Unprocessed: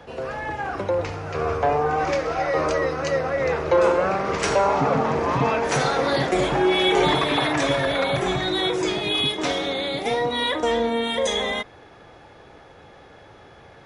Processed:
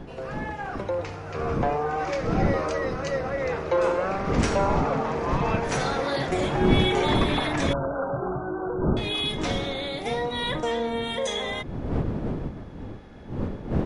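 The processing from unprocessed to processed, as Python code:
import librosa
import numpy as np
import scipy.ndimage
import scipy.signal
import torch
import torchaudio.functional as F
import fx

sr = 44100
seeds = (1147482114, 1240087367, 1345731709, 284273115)

y = fx.dmg_wind(x, sr, seeds[0], corner_hz=260.0, level_db=-25.0)
y = fx.brickwall_lowpass(y, sr, high_hz=1600.0, at=(7.73, 8.97))
y = y * 10.0 ** (-5.0 / 20.0)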